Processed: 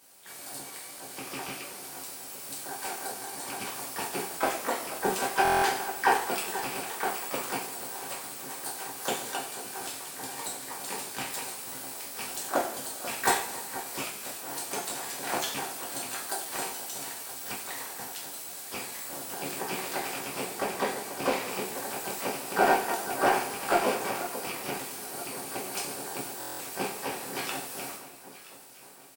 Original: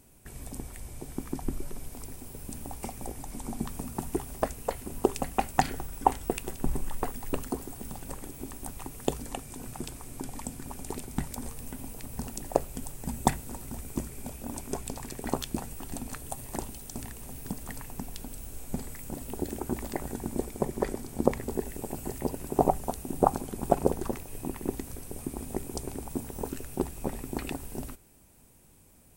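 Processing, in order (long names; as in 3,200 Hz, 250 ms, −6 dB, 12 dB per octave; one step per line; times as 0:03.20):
loose part that buzzes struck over −33 dBFS, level −27 dBFS
high-pass filter 650 Hz 12 dB per octave
soft clipping −15 dBFS, distortion −13 dB
double-tracking delay 14 ms −10 dB
on a send: delay that swaps between a low-pass and a high-pass 487 ms, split 1,400 Hz, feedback 69%, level −13 dB
on the sum: coupled-rooms reverb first 0.52 s, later 2.4 s, DRR −5.5 dB
pitch-shifted copies added −12 semitones −7 dB, +4 semitones −10 dB, +12 semitones −6 dB
buffer that repeats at 0:05.43/0:26.39, samples 1,024, times 8
level −1.5 dB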